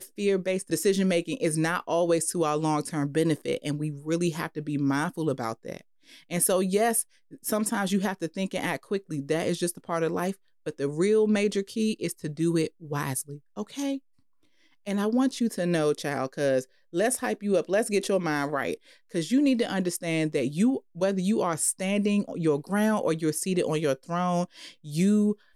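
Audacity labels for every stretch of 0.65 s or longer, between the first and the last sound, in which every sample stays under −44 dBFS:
13.980000	14.870000	silence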